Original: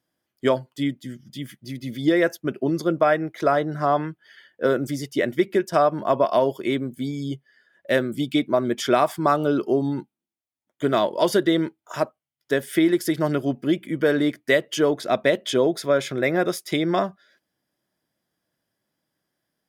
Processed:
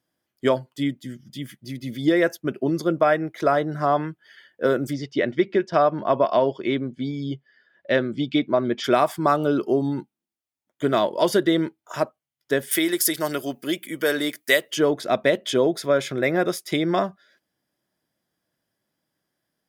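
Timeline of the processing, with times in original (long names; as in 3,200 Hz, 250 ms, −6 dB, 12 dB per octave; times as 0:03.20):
0:04.93–0:08.84: low-pass filter 5,100 Hz 24 dB per octave
0:12.71–0:14.71: RIAA equalisation recording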